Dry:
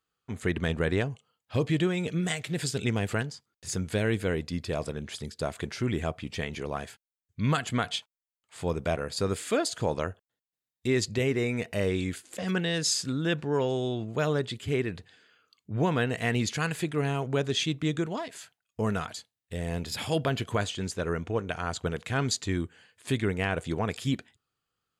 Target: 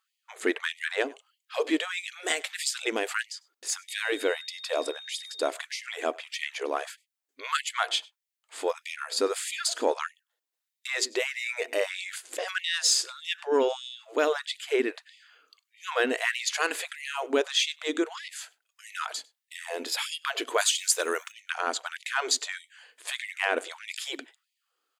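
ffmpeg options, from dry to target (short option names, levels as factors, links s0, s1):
-filter_complex "[0:a]asettb=1/sr,asplit=3[s0][s1][s2];[s0]atrim=end=3.884[s3];[s1]atrim=start=3.88:end=5.48,asetpts=PTS-STARTPTS,afade=t=in:d=0.004:c=qsin,afade=t=out:st=1.596:d=0.004:c=qsin,aeval=exprs='val(0)+0.00447*sin(2*PI*3700*n/s)':c=same[s4];[s2]atrim=start=5.476[s5];[s3][s4]acrossfade=d=0.004:c1=hsin:c2=qsin[s6];[s6][s5]acrossfade=d=0.004:c1=qsin:c2=hsin,asettb=1/sr,asplit=3[s7][s8][s9];[s7]atrim=end=20.584[s10];[s8]atrim=start=20.58:end=21.32,asetpts=PTS-STARTPTS,afade=t=in:d=0.004:c=qsin,afade=t=out:st=0.736:d=0.004:c=qsin,aemphasis=mode=production:type=riaa[s11];[s9]atrim=start=21.316[s12];[s10][s11]acrossfade=d=0.004:c1=hsin:c2=qsin[s13];[s13][s12]acrossfade=d=0.004:c1=qsin:c2=hsin,asplit=2[s14][s15];[s15]adelay=99.13,volume=0.0562,highshelf=f=4000:g=-2.23[s16];[s14][s16]amix=inputs=2:normalize=0,asplit=2[s17][s18];[s18]asoftclip=type=tanh:threshold=0.0447,volume=0.299[s19];[s17][s19]amix=inputs=2:normalize=0,afftfilt=real='re*gte(b*sr/1024,240*pow(1900/240,0.5+0.5*sin(2*PI*1.6*pts/sr)))':imag='im*gte(b*sr/1024,240*pow(1900/240,0.5+0.5*sin(2*PI*1.6*pts/sr)))':win_size=1024:overlap=0.75,volume=1.41"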